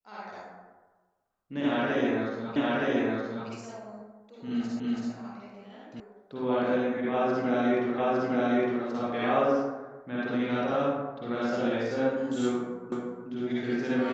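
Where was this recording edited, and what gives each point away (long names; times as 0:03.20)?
0:02.56: the same again, the last 0.92 s
0:04.80: the same again, the last 0.33 s
0:06.00: cut off before it has died away
0:07.98: the same again, the last 0.86 s
0:12.92: the same again, the last 0.36 s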